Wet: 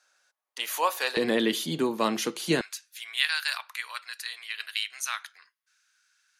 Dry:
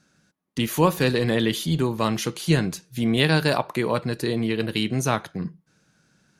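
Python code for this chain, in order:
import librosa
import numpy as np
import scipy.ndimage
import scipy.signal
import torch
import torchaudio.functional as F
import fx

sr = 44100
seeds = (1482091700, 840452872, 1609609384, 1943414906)

y = fx.highpass(x, sr, hz=fx.steps((0.0, 630.0), (1.17, 220.0), (2.61, 1400.0)), slope=24)
y = F.gain(torch.from_numpy(y), -1.5).numpy()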